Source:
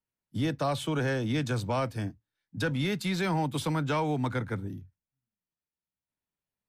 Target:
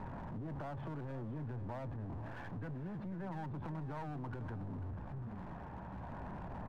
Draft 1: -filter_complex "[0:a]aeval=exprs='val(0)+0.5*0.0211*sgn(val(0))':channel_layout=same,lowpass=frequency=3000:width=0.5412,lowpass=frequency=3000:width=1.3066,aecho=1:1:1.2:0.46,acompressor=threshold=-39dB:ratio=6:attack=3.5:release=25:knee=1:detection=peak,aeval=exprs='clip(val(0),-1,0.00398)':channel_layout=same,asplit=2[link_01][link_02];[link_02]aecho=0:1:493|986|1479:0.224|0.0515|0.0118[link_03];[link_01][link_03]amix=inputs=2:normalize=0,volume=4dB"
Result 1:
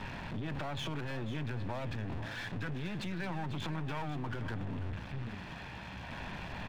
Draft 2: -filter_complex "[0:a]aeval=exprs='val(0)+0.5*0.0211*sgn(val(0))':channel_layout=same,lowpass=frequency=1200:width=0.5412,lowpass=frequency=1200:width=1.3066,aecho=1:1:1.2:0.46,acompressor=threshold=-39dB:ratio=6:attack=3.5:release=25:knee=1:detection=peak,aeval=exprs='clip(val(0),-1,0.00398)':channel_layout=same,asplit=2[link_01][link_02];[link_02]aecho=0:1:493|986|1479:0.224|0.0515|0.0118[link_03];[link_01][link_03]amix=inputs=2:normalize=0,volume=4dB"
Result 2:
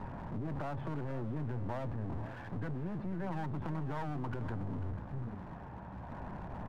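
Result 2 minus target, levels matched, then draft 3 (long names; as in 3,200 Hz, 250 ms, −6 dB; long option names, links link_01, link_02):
downward compressor: peak gain reduction −6 dB
-filter_complex "[0:a]aeval=exprs='val(0)+0.5*0.0211*sgn(val(0))':channel_layout=same,lowpass=frequency=1200:width=0.5412,lowpass=frequency=1200:width=1.3066,aecho=1:1:1.2:0.46,acompressor=threshold=-46dB:ratio=6:attack=3.5:release=25:knee=1:detection=peak,aeval=exprs='clip(val(0),-1,0.00398)':channel_layout=same,asplit=2[link_01][link_02];[link_02]aecho=0:1:493|986|1479:0.224|0.0515|0.0118[link_03];[link_01][link_03]amix=inputs=2:normalize=0,volume=4dB"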